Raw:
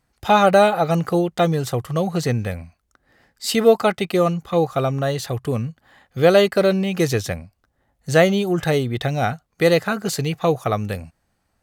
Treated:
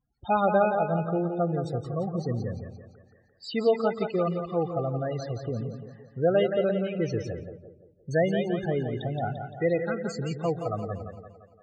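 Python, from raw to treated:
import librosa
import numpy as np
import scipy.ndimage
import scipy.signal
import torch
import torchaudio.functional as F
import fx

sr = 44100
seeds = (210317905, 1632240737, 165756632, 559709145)

y = fx.spec_topn(x, sr, count=16)
y = fx.echo_split(y, sr, split_hz=370.0, low_ms=126, high_ms=172, feedback_pct=52, wet_db=-7.0)
y = fx.env_lowpass(y, sr, base_hz=400.0, full_db=-14.5, at=(6.69, 8.11))
y = y * 10.0 ** (-9.0 / 20.0)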